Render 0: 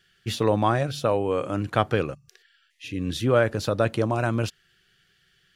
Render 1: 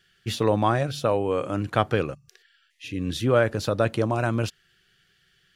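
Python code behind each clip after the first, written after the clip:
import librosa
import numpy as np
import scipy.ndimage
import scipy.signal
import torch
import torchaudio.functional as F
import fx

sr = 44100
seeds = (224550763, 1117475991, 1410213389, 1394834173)

y = x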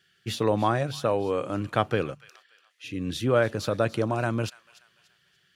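y = scipy.signal.sosfilt(scipy.signal.butter(2, 88.0, 'highpass', fs=sr, output='sos'), x)
y = fx.echo_wet_highpass(y, sr, ms=290, feedback_pct=36, hz=1600.0, wet_db=-16.5)
y = y * 10.0 ** (-2.0 / 20.0)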